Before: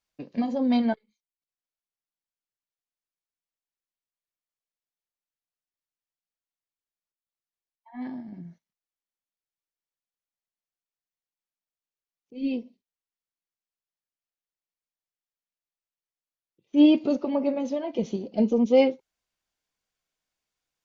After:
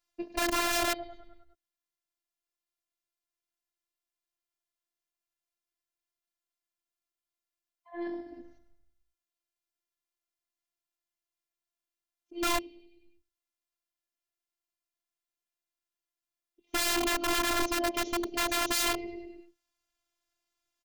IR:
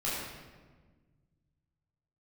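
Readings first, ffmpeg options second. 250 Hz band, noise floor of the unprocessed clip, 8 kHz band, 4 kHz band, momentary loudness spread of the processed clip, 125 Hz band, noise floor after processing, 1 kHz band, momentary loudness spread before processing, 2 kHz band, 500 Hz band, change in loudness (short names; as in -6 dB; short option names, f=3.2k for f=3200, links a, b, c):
-13.0 dB, under -85 dBFS, n/a, +8.0 dB, 18 LU, -8.5 dB, under -85 dBFS, +4.5 dB, 18 LU, +10.0 dB, -9.0 dB, -5.0 dB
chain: -filter_complex "[0:a]asplit=7[a][b][c][d][e][f][g];[b]adelay=101,afreqshift=-33,volume=-15dB[h];[c]adelay=202,afreqshift=-66,volume=-19.9dB[i];[d]adelay=303,afreqshift=-99,volume=-24.8dB[j];[e]adelay=404,afreqshift=-132,volume=-29.6dB[k];[f]adelay=505,afreqshift=-165,volume=-34.5dB[l];[g]adelay=606,afreqshift=-198,volume=-39.4dB[m];[a][h][i][j][k][l][m]amix=inputs=7:normalize=0,aeval=exprs='(mod(16.8*val(0)+1,2)-1)/16.8':c=same,afftfilt=real='hypot(re,im)*cos(PI*b)':imag='0':win_size=512:overlap=0.75,volume=4.5dB"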